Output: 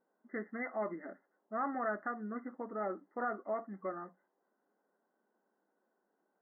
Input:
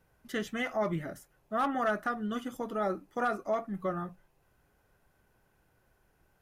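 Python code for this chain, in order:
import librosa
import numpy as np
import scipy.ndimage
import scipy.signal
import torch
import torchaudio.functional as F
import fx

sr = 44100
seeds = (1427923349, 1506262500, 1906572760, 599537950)

y = fx.env_lowpass(x, sr, base_hz=1100.0, full_db=-27.5)
y = fx.brickwall_bandpass(y, sr, low_hz=190.0, high_hz=2100.0)
y = y * 10.0 ** (-6.0 / 20.0)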